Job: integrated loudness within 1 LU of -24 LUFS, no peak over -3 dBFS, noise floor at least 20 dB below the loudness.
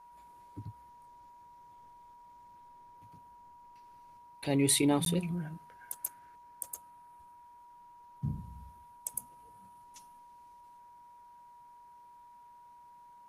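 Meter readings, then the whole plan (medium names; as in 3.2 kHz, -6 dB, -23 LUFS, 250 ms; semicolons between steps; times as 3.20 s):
dropouts 1; longest dropout 12 ms; steady tone 960 Hz; tone level -53 dBFS; loudness -33.5 LUFS; peak level -14.5 dBFS; loudness target -24.0 LUFS
-> interpolate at 5.05 s, 12 ms; band-stop 960 Hz, Q 30; trim +9.5 dB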